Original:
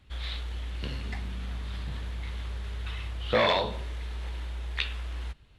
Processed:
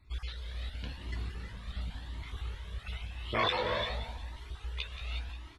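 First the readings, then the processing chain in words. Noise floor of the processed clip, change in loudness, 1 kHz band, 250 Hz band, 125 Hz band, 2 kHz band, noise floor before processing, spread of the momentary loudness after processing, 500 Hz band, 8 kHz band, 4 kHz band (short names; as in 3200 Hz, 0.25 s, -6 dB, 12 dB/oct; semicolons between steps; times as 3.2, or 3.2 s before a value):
-52 dBFS, -5.0 dB, -3.5 dB, -6.0 dB, -4.5 dB, -4.0 dB, -56 dBFS, 13 LU, -7.0 dB, n/a, -3.5 dB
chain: random spectral dropouts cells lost 30%; tremolo triangle 1.8 Hz, depth 50%; on a send: feedback echo 0.178 s, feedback 41%, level -12 dB; on the sum: non-linear reverb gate 0.39 s rising, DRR 4 dB; cascading flanger rising 0.91 Hz; gain +1.5 dB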